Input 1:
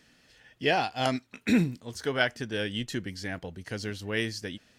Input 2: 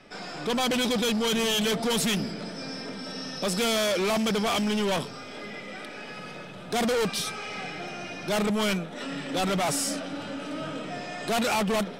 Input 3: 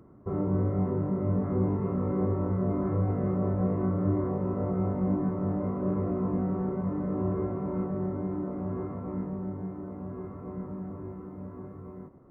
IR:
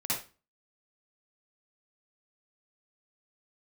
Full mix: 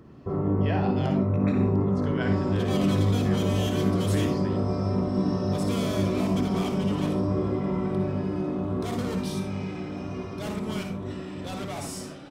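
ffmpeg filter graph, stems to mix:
-filter_complex "[0:a]aemphasis=mode=reproduction:type=75kf,acrossover=split=1500[s0][s1];[s0]aeval=exprs='val(0)*(1-0.5/2+0.5/2*cos(2*PI*2.6*n/s))':c=same[s2];[s1]aeval=exprs='val(0)*(1-0.5/2-0.5/2*cos(2*PI*2.6*n/s))':c=same[s3];[s2][s3]amix=inputs=2:normalize=0,volume=0.794,asplit=2[s4][s5];[s5]volume=0.266[s6];[1:a]adelay=2100,volume=0.224,asplit=2[s7][s8];[s8]volume=0.398[s9];[2:a]volume=1.19,asplit=2[s10][s11];[s11]volume=0.422[s12];[s4][s10]amix=inputs=2:normalize=0,alimiter=limit=0.0794:level=0:latency=1,volume=1[s13];[3:a]atrim=start_sample=2205[s14];[s6][s9][s12]amix=inputs=3:normalize=0[s15];[s15][s14]afir=irnorm=-1:irlink=0[s16];[s7][s13][s16]amix=inputs=3:normalize=0"

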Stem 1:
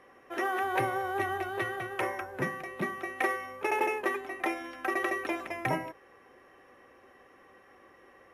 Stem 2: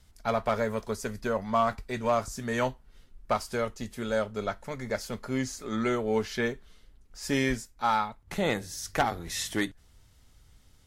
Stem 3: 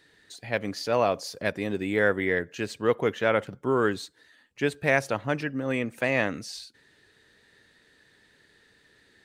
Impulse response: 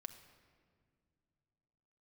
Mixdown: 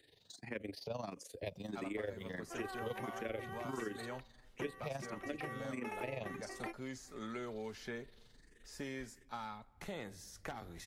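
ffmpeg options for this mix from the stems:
-filter_complex "[0:a]adelay=2200,volume=0.501[s0];[1:a]acompressor=threshold=0.0631:ratio=6,adelay=1500,volume=0.282,asplit=2[s1][s2];[s2]volume=0.251[s3];[2:a]equalizer=f=1400:t=o:w=1:g=-10,tremolo=f=23:d=0.75,asplit=2[s4][s5];[s5]afreqshift=1.5[s6];[s4][s6]amix=inputs=2:normalize=1,volume=1.26,asplit=2[s7][s8];[s8]apad=whole_len=464685[s9];[s0][s9]sidechaingate=range=0.0224:threshold=0.00141:ratio=16:detection=peak[s10];[3:a]atrim=start_sample=2205[s11];[s3][s11]afir=irnorm=-1:irlink=0[s12];[s10][s1][s7][s12]amix=inputs=4:normalize=0,acrossover=split=310|2000[s13][s14][s15];[s13]acompressor=threshold=0.00398:ratio=4[s16];[s14]acompressor=threshold=0.00631:ratio=4[s17];[s15]acompressor=threshold=0.00224:ratio=4[s18];[s16][s17][s18]amix=inputs=3:normalize=0"

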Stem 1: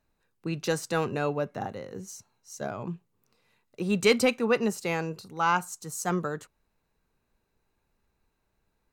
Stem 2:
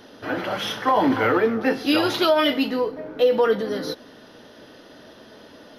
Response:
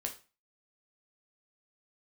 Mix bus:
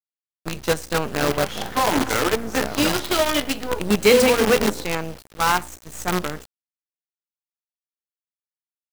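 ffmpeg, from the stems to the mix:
-filter_complex "[0:a]aeval=exprs='val(0)+0.00708*(sin(2*PI*60*n/s)+sin(2*PI*2*60*n/s)/2+sin(2*PI*3*60*n/s)/3+sin(2*PI*4*60*n/s)/4+sin(2*PI*5*60*n/s)/5)':c=same,volume=1.12,asplit=2[s0][s1];[s1]volume=0.668[s2];[1:a]adelay=900,volume=0.631,asplit=2[s3][s4];[s4]volume=0.316[s5];[2:a]atrim=start_sample=2205[s6];[s2][s5]amix=inputs=2:normalize=0[s7];[s7][s6]afir=irnorm=-1:irlink=0[s8];[s0][s3][s8]amix=inputs=3:normalize=0,agate=range=0.0224:threshold=0.0398:ratio=3:detection=peak,acrusher=bits=4:dc=4:mix=0:aa=0.000001"

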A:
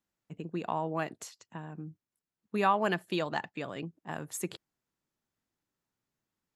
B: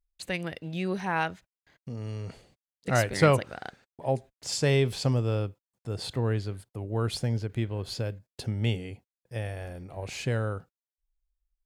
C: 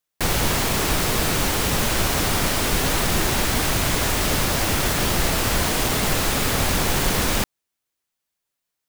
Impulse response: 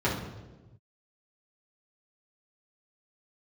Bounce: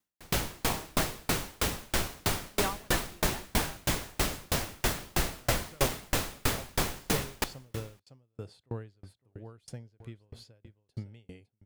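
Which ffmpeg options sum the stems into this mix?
-filter_complex "[0:a]volume=1.19[s0];[1:a]adelay=2500,volume=0.596,asplit=2[s1][s2];[s2]volume=0.119[s3];[2:a]volume=0.794,asplit=2[s4][s5];[s5]volume=0.158[s6];[s3][s6]amix=inputs=2:normalize=0,aecho=0:1:557:1[s7];[s0][s1][s4][s7]amix=inputs=4:normalize=0,aeval=exprs='val(0)*pow(10,-37*if(lt(mod(3.1*n/s,1),2*abs(3.1)/1000),1-mod(3.1*n/s,1)/(2*abs(3.1)/1000),(mod(3.1*n/s,1)-2*abs(3.1)/1000)/(1-2*abs(3.1)/1000))/20)':c=same"

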